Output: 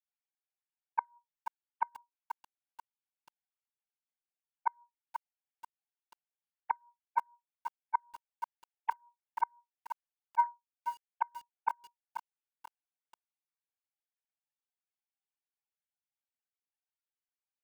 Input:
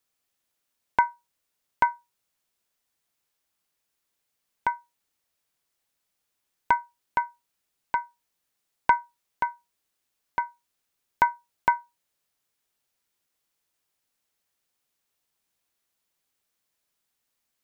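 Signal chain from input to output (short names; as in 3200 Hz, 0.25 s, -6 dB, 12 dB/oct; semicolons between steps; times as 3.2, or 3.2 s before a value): sine-wave speech; flipped gate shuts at -16 dBFS, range -34 dB; lo-fi delay 0.485 s, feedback 35%, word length 8-bit, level -8.5 dB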